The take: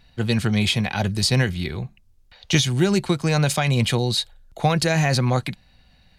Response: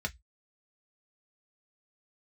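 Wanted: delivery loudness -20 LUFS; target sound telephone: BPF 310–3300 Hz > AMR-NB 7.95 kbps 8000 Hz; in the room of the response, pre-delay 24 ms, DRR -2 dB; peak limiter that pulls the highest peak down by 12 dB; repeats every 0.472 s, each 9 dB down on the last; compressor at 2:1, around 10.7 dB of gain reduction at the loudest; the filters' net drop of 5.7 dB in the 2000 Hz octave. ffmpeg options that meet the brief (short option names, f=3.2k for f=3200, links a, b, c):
-filter_complex "[0:a]equalizer=f=2k:t=o:g=-6.5,acompressor=threshold=-35dB:ratio=2,alimiter=level_in=3.5dB:limit=-24dB:level=0:latency=1,volume=-3.5dB,aecho=1:1:472|944|1416|1888:0.355|0.124|0.0435|0.0152,asplit=2[a][b];[1:a]atrim=start_sample=2205,adelay=24[c];[b][c]afir=irnorm=-1:irlink=0,volume=-1.5dB[d];[a][d]amix=inputs=2:normalize=0,highpass=310,lowpass=3.3k,volume=19.5dB" -ar 8000 -c:a libopencore_amrnb -b:a 7950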